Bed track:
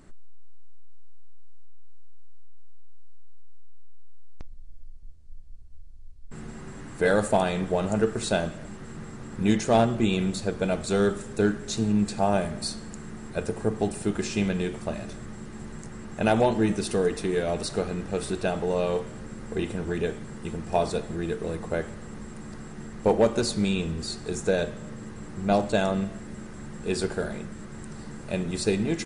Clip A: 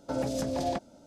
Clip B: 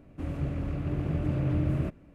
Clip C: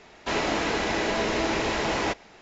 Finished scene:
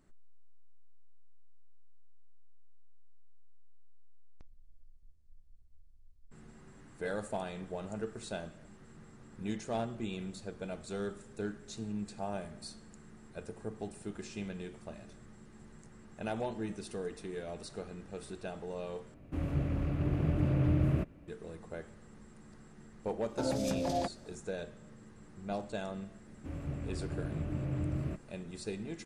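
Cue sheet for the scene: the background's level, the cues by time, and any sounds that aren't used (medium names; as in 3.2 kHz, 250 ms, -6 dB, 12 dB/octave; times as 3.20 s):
bed track -15 dB
19.14 s: replace with B -1 dB
23.29 s: add A -2.5 dB
26.26 s: add B -7.5 dB
not used: C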